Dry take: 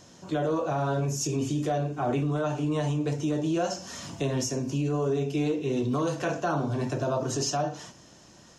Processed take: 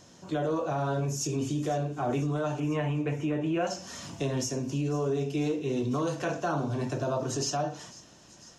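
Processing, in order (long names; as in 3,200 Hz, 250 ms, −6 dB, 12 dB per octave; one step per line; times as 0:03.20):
0:02.60–0:03.67: high shelf with overshoot 3,400 Hz −12.5 dB, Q 3
delay with a high-pass on its return 498 ms, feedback 76%, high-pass 3,200 Hz, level −17.5 dB
level −2 dB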